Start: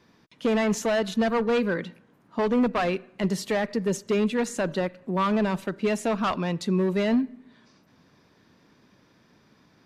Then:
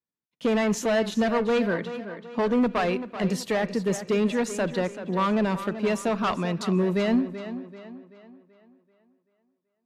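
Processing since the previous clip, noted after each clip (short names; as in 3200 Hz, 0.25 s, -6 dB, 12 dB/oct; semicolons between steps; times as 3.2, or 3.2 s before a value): gate -51 dBFS, range -38 dB; on a send: tape echo 0.384 s, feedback 47%, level -10 dB, low-pass 5200 Hz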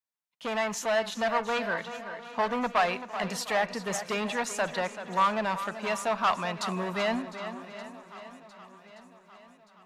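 resonant low shelf 550 Hz -10.5 dB, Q 1.5; swung echo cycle 1.175 s, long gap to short 1.5:1, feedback 43%, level -19 dB; vocal rider within 3 dB 2 s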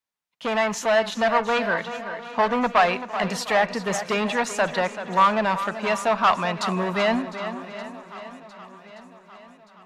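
high shelf 6800 Hz -8 dB; gain +7 dB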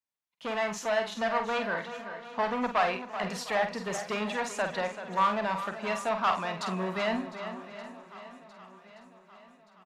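doubler 48 ms -7.5 dB; gain -8.5 dB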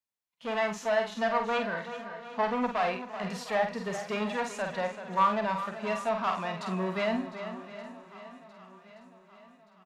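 harmonic-percussive split percussive -10 dB; gain +1.5 dB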